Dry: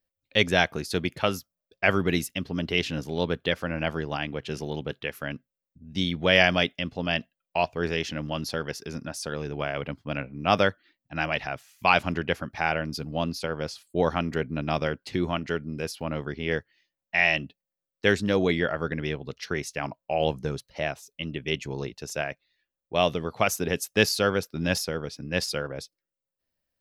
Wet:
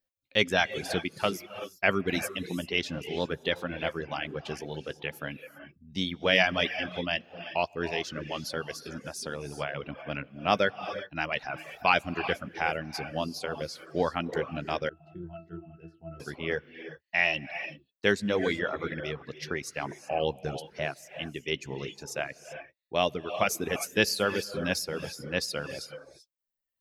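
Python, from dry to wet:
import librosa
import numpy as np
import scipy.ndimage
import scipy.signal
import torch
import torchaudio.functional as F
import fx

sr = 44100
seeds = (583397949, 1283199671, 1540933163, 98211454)

y = fx.low_shelf(x, sr, hz=130.0, db=-6.0)
y = fx.doubler(y, sr, ms=15.0, db=-13.5)
y = fx.rev_gated(y, sr, seeds[0], gate_ms=410, shape='rising', drr_db=7.5)
y = fx.dereverb_blind(y, sr, rt60_s=0.9)
y = fx.octave_resonator(y, sr, note='E', decay_s=0.19, at=(14.89, 16.2))
y = y * 10.0 ** (-2.5 / 20.0)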